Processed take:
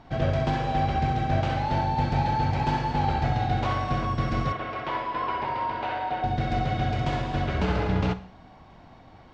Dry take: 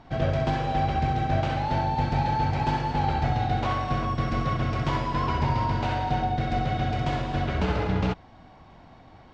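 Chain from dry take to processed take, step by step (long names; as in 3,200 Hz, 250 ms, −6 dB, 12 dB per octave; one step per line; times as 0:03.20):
0:04.52–0:06.24: three-way crossover with the lows and the highs turned down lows −19 dB, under 330 Hz, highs −21 dB, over 3,800 Hz
four-comb reverb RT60 0.57 s, combs from 33 ms, DRR 14 dB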